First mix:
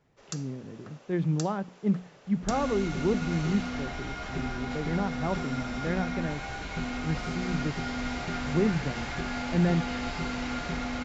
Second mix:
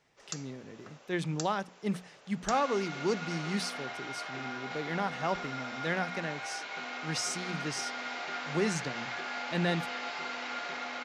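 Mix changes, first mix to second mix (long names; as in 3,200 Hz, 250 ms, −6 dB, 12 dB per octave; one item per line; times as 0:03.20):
speech: remove head-to-tape spacing loss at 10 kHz 36 dB
second sound: add band-pass filter 410–5,200 Hz
master: add low-shelf EQ 340 Hz −10.5 dB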